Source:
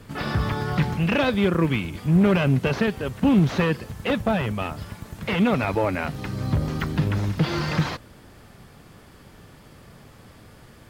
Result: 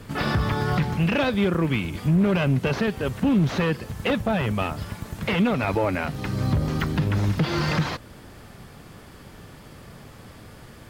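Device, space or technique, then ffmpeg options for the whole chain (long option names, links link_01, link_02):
soft clipper into limiter: -af "asoftclip=type=tanh:threshold=-10dB,alimiter=limit=-17dB:level=0:latency=1:release=333,volume=3.5dB"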